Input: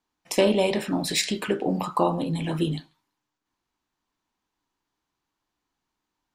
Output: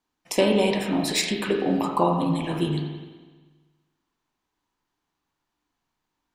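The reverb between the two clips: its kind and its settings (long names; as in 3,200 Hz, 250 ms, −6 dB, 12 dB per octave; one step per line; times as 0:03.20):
spring reverb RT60 1.4 s, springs 40/47 ms, chirp 50 ms, DRR 3 dB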